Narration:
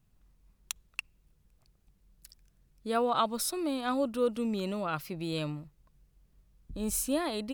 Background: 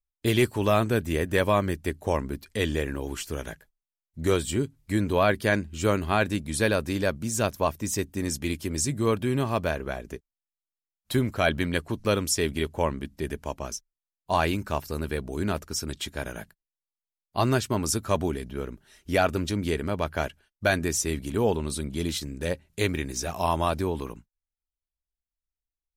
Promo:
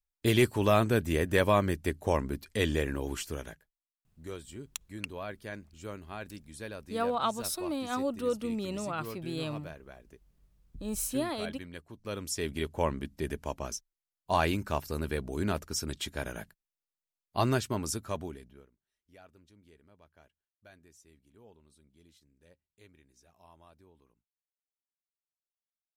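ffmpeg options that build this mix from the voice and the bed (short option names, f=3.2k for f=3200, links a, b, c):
-filter_complex "[0:a]adelay=4050,volume=-2dB[a];[1:a]volume=13dB,afade=t=out:st=3.14:d=0.61:silence=0.158489,afade=t=in:st=11.98:d=0.92:silence=0.177828,afade=t=out:st=17.33:d=1.37:silence=0.0316228[b];[a][b]amix=inputs=2:normalize=0"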